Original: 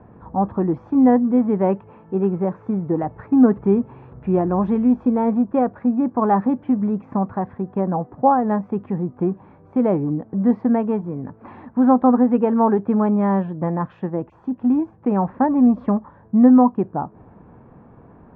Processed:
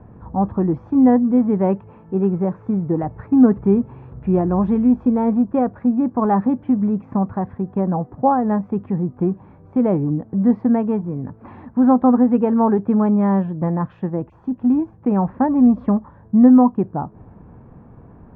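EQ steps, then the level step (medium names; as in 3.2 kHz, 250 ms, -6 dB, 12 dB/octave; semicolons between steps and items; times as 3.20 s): bass shelf 160 Hz +10 dB; -1.5 dB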